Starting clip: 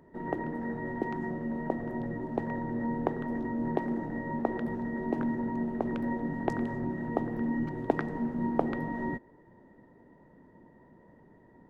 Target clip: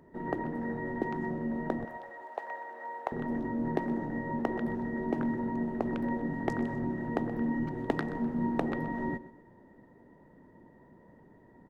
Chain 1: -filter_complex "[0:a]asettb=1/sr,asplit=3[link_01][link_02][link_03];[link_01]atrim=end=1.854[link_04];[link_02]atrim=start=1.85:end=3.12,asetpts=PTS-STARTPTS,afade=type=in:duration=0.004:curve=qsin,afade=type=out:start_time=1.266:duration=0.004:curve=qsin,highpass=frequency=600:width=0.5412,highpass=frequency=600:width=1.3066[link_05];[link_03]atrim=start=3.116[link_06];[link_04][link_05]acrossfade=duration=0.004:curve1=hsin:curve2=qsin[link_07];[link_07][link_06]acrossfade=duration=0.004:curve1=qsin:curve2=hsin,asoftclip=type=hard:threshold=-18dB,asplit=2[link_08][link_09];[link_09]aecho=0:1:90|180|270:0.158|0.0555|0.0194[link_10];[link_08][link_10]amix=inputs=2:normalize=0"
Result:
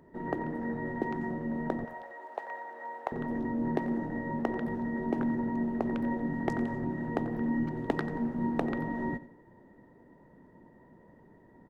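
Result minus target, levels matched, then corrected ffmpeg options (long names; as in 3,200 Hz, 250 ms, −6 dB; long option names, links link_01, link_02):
echo 36 ms early
-filter_complex "[0:a]asettb=1/sr,asplit=3[link_01][link_02][link_03];[link_01]atrim=end=1.854[link_04];[link_02]atrim=start=1.85:end=3.12,asetpts=PTS-STARTPTS,afade=type=in:duration=0.004:curve=qsin,afade=type=out:start_time=1.266:duration=0.004:curve=qsin,highpass=frequency=600:width=0.5412,highpass=frequency=600:width=1.3066[link_05];[link_03]atrim=start=3.116[link_06];[link_04][link_05]acrossfade=duration=0.004:curve1=hsin:curve2=qsin[link_07];[link_07][link_06]acrossfade=duration=0.004:curve1=qsin:curve2=hsin,asoftclip=type=hard:threshold=-18dB,asplit=2[link_08][link_09];[link_09]aecho=0:1:126|252|378:0.158|0.0555|0.0194[link_10];[link_08][link_10]amix=inputs=2:normalize=0"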